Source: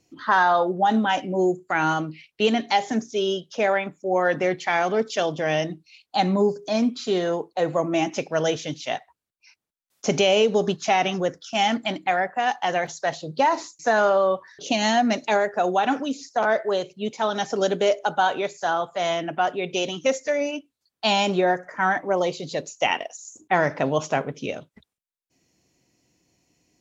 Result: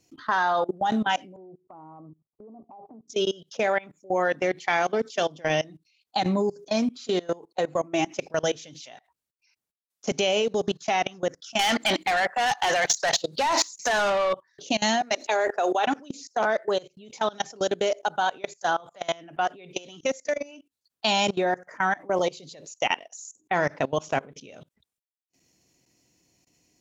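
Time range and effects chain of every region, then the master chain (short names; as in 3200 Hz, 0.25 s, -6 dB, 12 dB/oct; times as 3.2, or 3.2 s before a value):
1.36–3.08 steep low-pass 1200 Hz 96 dB/oct + compressor 3:1, threshold -38 dBFS
11.59–14.33 high shelf 2200 Hz +7 dB + overdrive pedal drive 20 dB, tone 4200 Hz, clips at -6 dBFS
15.01–15.86 HPF 320 Hz 24 dB/oct + sustainer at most 34 dB/s
whole clip: level quantiser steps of 23 dB; high shelf 4500 Hz +6 dB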